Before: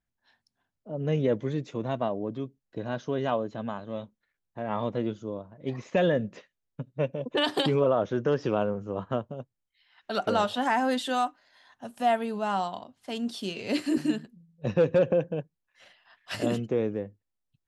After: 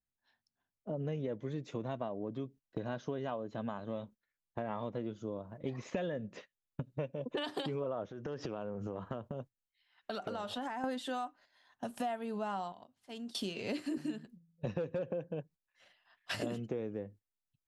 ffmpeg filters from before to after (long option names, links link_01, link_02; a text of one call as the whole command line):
ffmpeg -i in.wav -filter_complex "[0:a]asettb=1/sr,asplit=3[link_01][link_02][link_03];[link_01]atrim=end=8.084[link_04];[link_02]atrim=start=8.08:end=10.84,asetpts=PTS-STARTPTS,afade=type=in:duration=0.004:curve=qsin,afade=type=out:start_time=2.756:duration=0.004:curve=qsin,acompressor=threshold=-37dB:ratio=5:attack=3.2:release=140:knee=1:detection=peak[link_05];[link_03]atrim=start=10.836[link_06];[link_04][link_05]acrossfade=duration=0.004:curve1=hsin:curve2=qsin[link_07];[link_07][link_06]acrossfade=duration=0.004:curve1=qsin:curve2=hsin,asettb=1/sr,asplit=3[link_08][link_09][link_10];[link_08]atrim=end=12.724[link_11];[link_09]atrim=start=12.72:end=13.35,asetpts=PTS-STARTPTS,afade=type=in:duration=0.004:curve=qsin,afade=type=out:start_time=0.626:duration=0.004:curve=qsin,acompressor=threshold=-58dB:ratio=2:attack=3.2:release=140:knee=1:detection=peak[link_12];[link_10]atrim=start=13.346[link_13];[link_11][link_12]acrossfade=duration=0.004:curve1=hsin:curve2=qsin[link_14];[link_14][link_13]acrossfade=duration=0.004:curve1=qsin:curve2=hsin,agate=range=-13dB:threshold=-49dB:ratio=16:detection=peak,acompressor=threshold=-39dB:ratio=6,adynamicequalizer=threshold=0.00224:dfrequency=1800:dqfactor=0.7:tfrequency=1800:tqfactor=0.7:attack=5:release=100:ratio=0.375:range=2:mode=cutabove:tftype=highshelf,volume=3.5dB" out.wav